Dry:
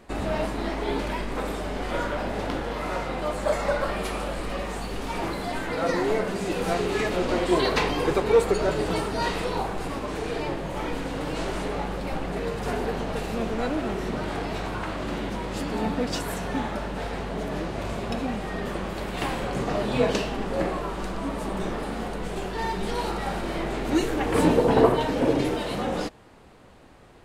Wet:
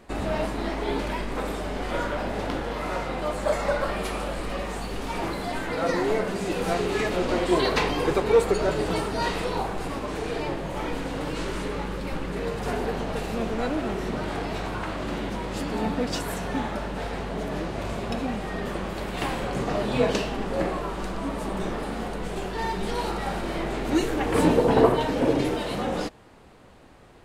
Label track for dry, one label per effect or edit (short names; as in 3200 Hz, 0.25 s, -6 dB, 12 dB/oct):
11.300000	12.390000	bell 710 Hz -12 dB 0.29 oct